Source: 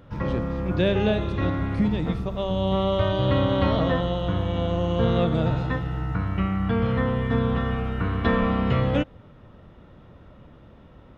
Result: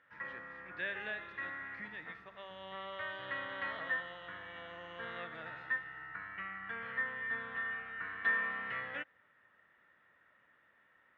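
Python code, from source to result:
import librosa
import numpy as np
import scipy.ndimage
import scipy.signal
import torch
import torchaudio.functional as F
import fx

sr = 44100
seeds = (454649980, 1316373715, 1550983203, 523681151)

y = fx.bandpass_q(x, sr, hz=1800.0, q=6.2)
y = y * 10.0 ** (1.5 / 20.0)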